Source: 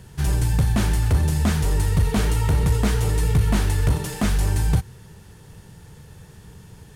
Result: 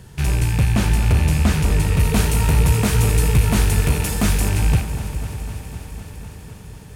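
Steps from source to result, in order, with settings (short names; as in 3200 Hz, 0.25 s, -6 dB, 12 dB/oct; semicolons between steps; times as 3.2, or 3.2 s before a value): rattling part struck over -28 dBFS, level -22 dBFS; 1.99–4.49 high shelf 6700 Hz +8.5 dB; analogue delay 0.199 s, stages 2048, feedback 75%, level -11.5 dB; lo-fi delay 0.252 s, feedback 80%, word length 10-bit, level -14 dB; gain +2 dB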